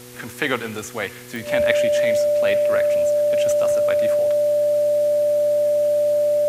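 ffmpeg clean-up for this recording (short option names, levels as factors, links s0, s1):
-af "adeclick=t=4,bandreject=f=122.9:t=h:w=4,bandreject=f=245.8:t=h:w=4,bandreject=f=368.7:t=h:w=4,bandreject=f=491.6:t=h:w=4,bandreject=f=590:w=30,afwtdn=0.0071"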